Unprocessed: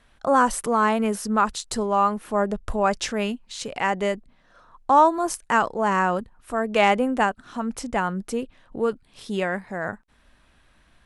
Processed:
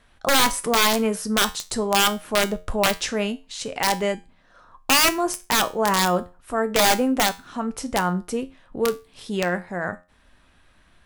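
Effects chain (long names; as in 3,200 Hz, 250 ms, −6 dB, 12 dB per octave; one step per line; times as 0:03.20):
wrap-around overflow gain 12.5 dB
tuned comb filter 89 Hz, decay 0.3 s, harmonics all, mix 60%
level +6.5 dB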